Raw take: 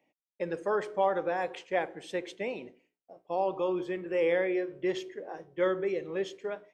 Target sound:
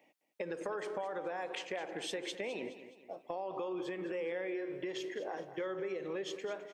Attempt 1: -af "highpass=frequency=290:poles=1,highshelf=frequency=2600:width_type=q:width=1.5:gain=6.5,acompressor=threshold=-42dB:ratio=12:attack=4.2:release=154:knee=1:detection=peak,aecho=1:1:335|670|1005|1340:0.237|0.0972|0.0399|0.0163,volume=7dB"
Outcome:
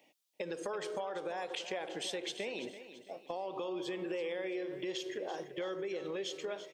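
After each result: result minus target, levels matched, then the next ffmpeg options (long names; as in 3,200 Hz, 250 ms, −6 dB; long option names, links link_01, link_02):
echo 125 ms late; 4,000 Hz band +3.5 dB
-af "highpass=frequency=290:poles=1,highshelf=frequency=2600:width_type=q:width=1.5:gain=6.5,acompressor=threshold=-42dB:ratio=12:attack=4.2:release=154:knee=1:detection=peak,aecho=1:1:210|420|630|840:0.237|0.0972|0.0399|0.0163,volume=7dB"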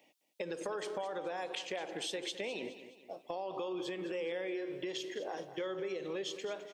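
4,000 Hz band +3.5 dB
-af "highpass=frequency=290:poles=1,acompressor=threshold=-42dB:ratio=12:attack=4.2:release=154:knee=1:detection=peak,aecho=1:1:210|420|630|840:0.237|0.0972|0.0399|0.0163,volume=7dB"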